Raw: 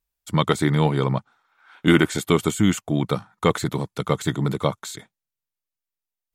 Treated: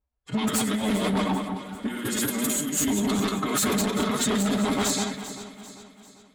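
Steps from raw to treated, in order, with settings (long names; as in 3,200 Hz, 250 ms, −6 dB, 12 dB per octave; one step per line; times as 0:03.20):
feedback delay that plays each chunk backwards 103 ms, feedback 52%, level −1.5 dB
first-order pre-emphasis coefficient 0.8
low-pass that shuts in the quiet parts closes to 850 Hz, open at −27.5 dBFS
dynamic equaliser 300 Hz, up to +4 dB, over −44 dBFS, Q 3.4
compressor whose output falls as the input rises −33 dBFS, ratio −0.5
phase-vocoder pitch shift with formants kept +6 semitones
sine wavefolder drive 10 dB, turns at −18.5 dBFS
notch comb filter 170 Hz
delay that swaps between a low-pass and a high-pass 197 ms, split 2,000 Hz, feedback 67%, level −10 dB
saturating transformer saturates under 270 Hz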